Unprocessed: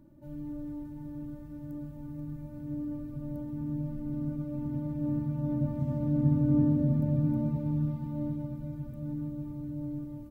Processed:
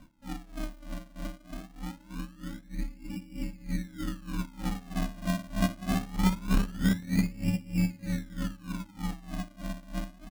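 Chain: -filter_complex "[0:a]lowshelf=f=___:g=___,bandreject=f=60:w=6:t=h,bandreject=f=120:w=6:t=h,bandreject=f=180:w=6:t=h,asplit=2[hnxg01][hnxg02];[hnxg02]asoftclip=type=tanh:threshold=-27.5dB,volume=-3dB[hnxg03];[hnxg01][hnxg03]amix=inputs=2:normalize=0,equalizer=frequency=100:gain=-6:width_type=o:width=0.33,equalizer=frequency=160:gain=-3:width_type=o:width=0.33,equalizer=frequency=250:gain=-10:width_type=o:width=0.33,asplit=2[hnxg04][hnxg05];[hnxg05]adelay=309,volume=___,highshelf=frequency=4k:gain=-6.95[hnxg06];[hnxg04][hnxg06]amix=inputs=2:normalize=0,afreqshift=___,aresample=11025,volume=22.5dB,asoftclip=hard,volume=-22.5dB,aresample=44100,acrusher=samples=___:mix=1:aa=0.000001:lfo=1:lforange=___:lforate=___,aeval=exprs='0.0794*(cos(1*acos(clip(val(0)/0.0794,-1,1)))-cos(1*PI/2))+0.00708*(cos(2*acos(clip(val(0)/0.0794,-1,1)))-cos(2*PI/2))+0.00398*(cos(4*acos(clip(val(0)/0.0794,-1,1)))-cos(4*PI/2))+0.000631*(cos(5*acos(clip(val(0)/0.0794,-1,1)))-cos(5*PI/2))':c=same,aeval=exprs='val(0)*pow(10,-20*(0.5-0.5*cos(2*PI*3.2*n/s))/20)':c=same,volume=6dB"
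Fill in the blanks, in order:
330, -2.5, -13dB, -330, 34, 34, 0.23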